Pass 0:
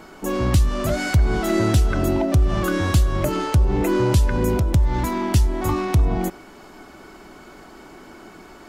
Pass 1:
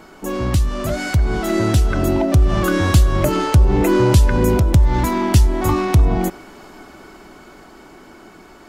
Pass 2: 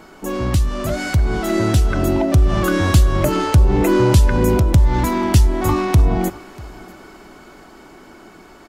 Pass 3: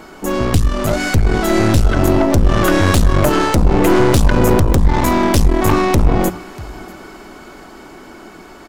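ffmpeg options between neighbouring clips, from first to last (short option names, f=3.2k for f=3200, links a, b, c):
-af "dynaudnorm=f=250:g=17:m=11.5dB"
-af "aecho=1:1:640:0.0668"
-af "aeval=exprs='0.891*(cos(1*acos(clip(val(0)/0.891,-1,1)))-cos(1*PI/2))+0.447*(cos(5*acos(clip(val(0)/0.891,-1,1)))-cos(5*PI/2))+0.251*(cos(8*acos(clip(val(0)/0.891,-1,1)))-cos(8*PI/2))':c=same,bandreject=f=60:t=h:w=6,bandreject=f=120:t=h:w=6,bandreject=f=180:t=h:w=6,volume=-5.5dB"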